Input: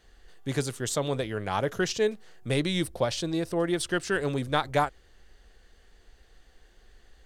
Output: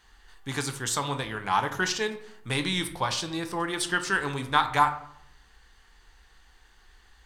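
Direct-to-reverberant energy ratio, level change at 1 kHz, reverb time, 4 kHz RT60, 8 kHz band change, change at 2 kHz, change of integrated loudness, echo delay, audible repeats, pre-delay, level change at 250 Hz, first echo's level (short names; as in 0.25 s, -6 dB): 7.0 dB, +6.0 dB, 0.70 s, 0.40 s, +3.0 dB, +5.0 dB, +1.0 dB, none, none, 8 ms, -3.5 dB, none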